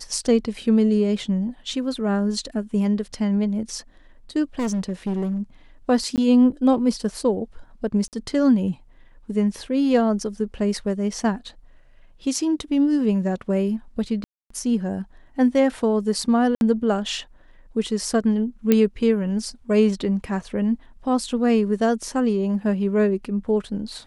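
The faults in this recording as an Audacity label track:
4.590000	5.380000	clipping −20.5 dBFS
6.160000	6.180000	drop-out 18 ms
8.080000	8.130000	drop-out 48 ms
14.240000	14.500000	drop-out 264 ms
16.550000	16.610000	drop-out 61 ms
18.720000	18.720000	click −5 dBFS

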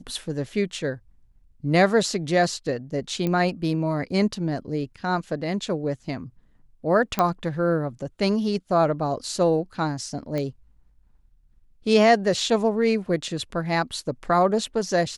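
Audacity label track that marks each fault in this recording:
3.270000	3.270000	click −14 dBFS
7.190000	7.190000	click −8 dBFS
10.380000	10.380000	click −16 dBFS

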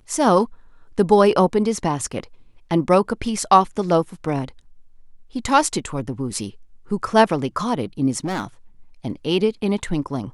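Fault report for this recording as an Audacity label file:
8.240000	8.450000	clipping −20.5 dBFS

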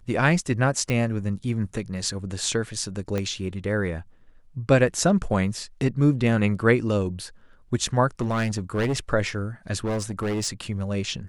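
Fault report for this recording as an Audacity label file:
0.900000	0.900000	click −13 dBFS
3.180000	3.180000	click −14 dBFS
8.210000	8.990000	clipping −20 dBFS
9.840000	10.480000	clipping −23 dBFS

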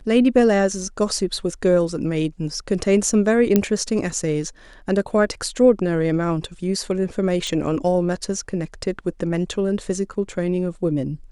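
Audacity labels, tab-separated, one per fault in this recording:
3.560000	3.560000	click −3 dBFS
7.470000	7.470000	click −14 dBFS

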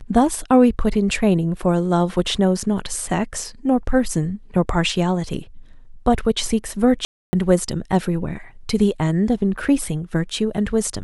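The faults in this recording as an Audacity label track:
7.050000	7.330000	drop-out 280 ms

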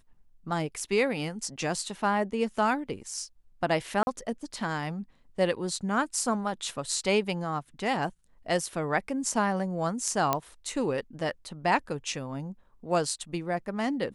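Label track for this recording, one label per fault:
4.030000	4.070000	drop-out 41 ms
10.330000	10.330000	click −10 dBFS

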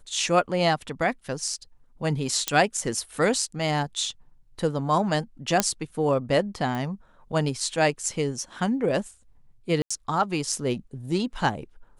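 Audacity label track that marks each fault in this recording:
2.480000	2.480000	click −7 dBFS
5.600000	5.600000	click −3 dBFS
6.750000	6.750000	click −19 dBFS
9.820000	9.900000	drop-out 85 ms

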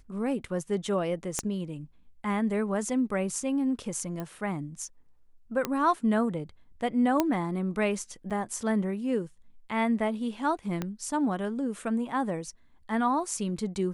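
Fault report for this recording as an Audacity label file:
1.390000	1.390000	click −13 dBFS
4.200000	4.200000	click −22 dBFS
5.650000	5.650000	click −13 dBFS
7.200000	7.200000	click −10 dBFS
8.300000	8.310000	drop-out 6 ms
10.820000	10.820000	click −17 dBFS

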